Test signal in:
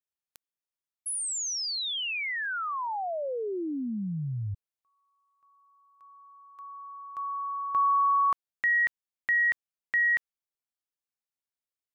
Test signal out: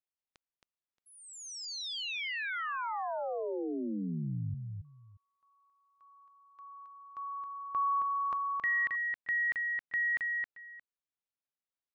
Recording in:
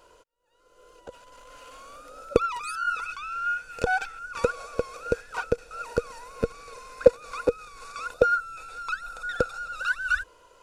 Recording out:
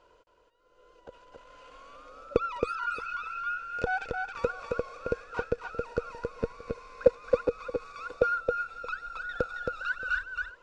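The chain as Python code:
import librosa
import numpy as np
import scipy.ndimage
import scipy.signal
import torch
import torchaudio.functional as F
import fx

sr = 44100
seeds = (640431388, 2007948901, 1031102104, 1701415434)

y = fx.air_absorb(x, sr, metres=130.0)
y = fx.echo_multitap(y, sr, ms=(270, 625), db=(-4.0, -19.5))
y = y * librosa.db_to_amplitude(-4.5)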